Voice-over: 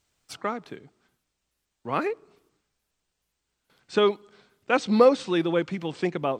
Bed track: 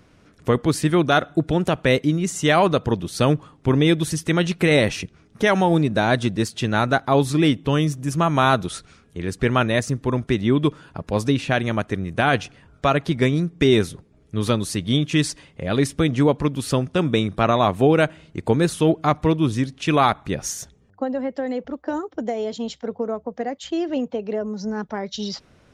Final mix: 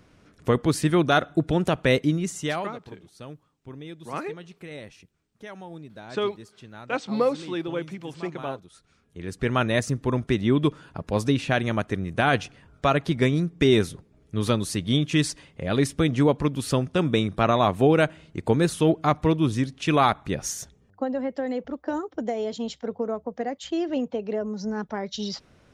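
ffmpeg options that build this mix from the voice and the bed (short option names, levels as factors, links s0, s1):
-filter_complex "[0:a]adelay=2200,volume=0.531[s0];[1:a]volume=7.94,afade=t=out:st=2.08:d=0.65:silence=0.0944061,afade=t=in:st=8.71:d=1.07:silence=0.0944061[s1];[s0][s1]amix=inputs=2:normalize=0"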